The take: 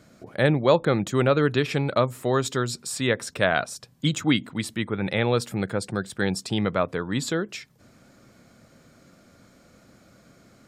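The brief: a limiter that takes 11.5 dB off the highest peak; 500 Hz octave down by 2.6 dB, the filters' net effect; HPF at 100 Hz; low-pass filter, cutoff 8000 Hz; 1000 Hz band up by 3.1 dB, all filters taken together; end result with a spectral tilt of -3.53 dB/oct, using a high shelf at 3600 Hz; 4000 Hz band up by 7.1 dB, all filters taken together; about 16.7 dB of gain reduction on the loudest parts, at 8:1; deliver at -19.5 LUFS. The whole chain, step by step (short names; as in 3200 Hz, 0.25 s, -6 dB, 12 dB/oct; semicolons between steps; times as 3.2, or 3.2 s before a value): HPF 100 Hz; LPF 8000 Hz; bell 500 Hz -4.5 dB; bell 1000 Hz +4.5 dB; high shelf 3600 Hz +6 dB; bell 4000 Hz +5 dB; compressor 8:1, threshold -32 dBFS; gain +19.5 dB; limiter -7 dBFS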